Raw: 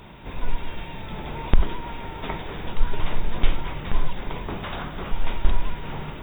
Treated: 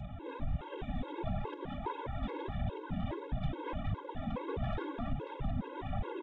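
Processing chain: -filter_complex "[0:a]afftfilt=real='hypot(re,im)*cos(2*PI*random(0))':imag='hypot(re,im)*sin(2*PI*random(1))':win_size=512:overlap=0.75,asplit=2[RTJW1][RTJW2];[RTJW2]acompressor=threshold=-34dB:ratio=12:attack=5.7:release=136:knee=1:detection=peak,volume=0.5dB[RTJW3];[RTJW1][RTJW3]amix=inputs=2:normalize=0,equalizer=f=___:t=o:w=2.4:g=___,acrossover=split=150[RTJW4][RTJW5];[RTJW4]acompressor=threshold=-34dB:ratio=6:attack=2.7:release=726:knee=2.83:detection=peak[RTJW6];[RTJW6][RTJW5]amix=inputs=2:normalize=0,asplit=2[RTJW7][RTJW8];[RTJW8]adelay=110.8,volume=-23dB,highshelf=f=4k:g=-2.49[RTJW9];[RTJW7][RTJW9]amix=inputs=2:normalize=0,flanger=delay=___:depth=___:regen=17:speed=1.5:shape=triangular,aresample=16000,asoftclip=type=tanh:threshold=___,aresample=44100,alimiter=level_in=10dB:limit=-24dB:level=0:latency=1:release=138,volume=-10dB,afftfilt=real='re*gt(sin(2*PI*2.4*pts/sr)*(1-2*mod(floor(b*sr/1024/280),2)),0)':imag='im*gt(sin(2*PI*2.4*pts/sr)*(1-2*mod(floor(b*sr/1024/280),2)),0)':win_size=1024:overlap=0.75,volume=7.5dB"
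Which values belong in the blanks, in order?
2.7k, -12.5, 1.1, 3.3, -31dB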